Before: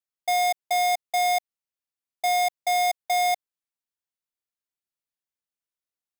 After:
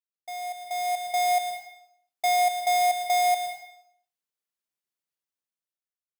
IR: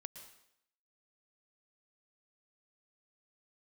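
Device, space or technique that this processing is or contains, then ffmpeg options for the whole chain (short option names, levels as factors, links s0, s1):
far laptop microphone: -filter_complex "[1:a]atrim=start_sample=2205[s0];[0:a][s0]afir=irnorm=-1:irlink=0,highpass=120,dynaudnorm=f=270:g=7:m=5.01,volume=0.376"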